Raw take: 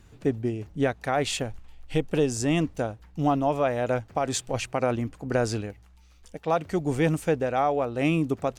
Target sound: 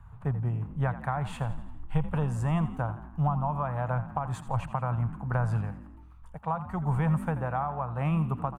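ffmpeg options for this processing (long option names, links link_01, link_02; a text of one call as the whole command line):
ffmpeg -i in.wav -filter_complex "[0:a]firequalizer=gain_entry='entry(140,0);entry(290,-24);entry(960,5);entry(2000,-14);entry(5400,-30);entry(9400,-17)':delay=0.05:min_phase=1,acrossover=split=200[link_01][link_02];[link_02]acompressor=threshold=-33dB:ratio=6[link_03];[link_01][link_03]amix=inputs=2:normalize=0,asplit=2[link_04][link_05];[link_05]asplit=5[link_06][link_07][link_08][link_09][link_10];[link_06]adelay=84,afreqshift=42,volume=-14dB[link_11];[link_07]adelay=168,afreqshift=84,volume=-19.5dB[link_12];[link_08]adelay=252,afreqshift=126,volume=-25dB[link_13];[link_09]adelay=336,afreqshift=168,volume=-30.5dB[link_14];[link_10]adelay=420,afreqshift=210,volume=-36.1dB[link_15];[link_11][link_12][link_13][link_14][link_15]amix=inputs=5:normalize=0[link_16];[link_04][link_16]amix=inputs=2:normalize=0,volume=5dB" out.wav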